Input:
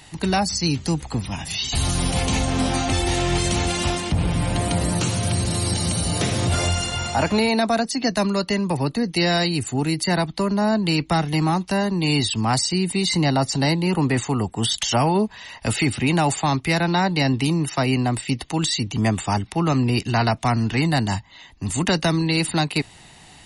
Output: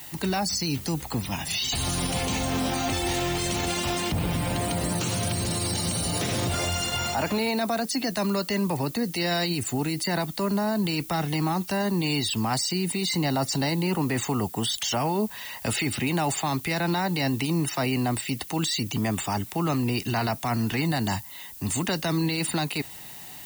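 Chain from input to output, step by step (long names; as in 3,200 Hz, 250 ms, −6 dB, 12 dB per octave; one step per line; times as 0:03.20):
low-shelf EQ 80 Hz −11 dB
brickwall limiter −18 dBFS, peak gain reduction 9 dB
background noise violet −43 dBFS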